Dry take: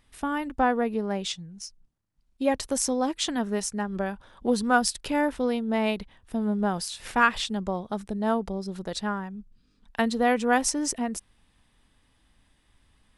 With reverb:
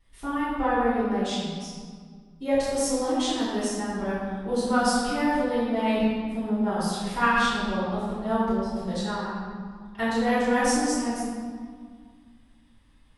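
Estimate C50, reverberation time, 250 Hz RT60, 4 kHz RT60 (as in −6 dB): −3.0 dB, 1.9 s, 2.6 s, 1.2 s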